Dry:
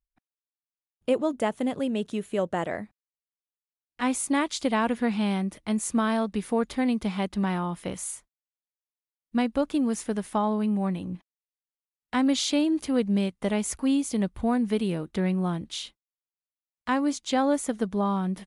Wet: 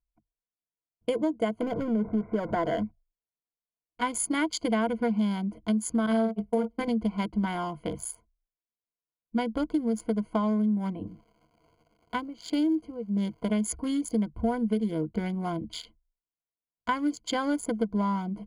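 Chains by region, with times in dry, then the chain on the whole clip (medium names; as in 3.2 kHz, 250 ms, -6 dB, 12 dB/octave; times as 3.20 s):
1.61–2.83 s: jump at every zero crossing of -30.5 dBFS + Chebyshev low-pass 2.1 kHz, order 6
6.06–6.88 s: flutter echo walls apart 8.4 m, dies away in 0.49 s + gate -27 dBFS, range -35 dB
11.06–13.48 s: tremolo 1.5 Hz, depth 80% + crackle 270 per s -41 dBFS
whole clip: local Wiener filter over 25 samples; rippled EQ curve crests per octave 1.8, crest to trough 15 dB; compression, threshold -23 dBFS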